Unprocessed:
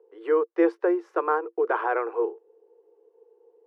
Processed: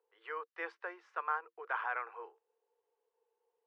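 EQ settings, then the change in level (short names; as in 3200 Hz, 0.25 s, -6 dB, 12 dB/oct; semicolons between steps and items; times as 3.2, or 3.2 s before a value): BPF 760–2600 Hz; differentiator; +8.0 dB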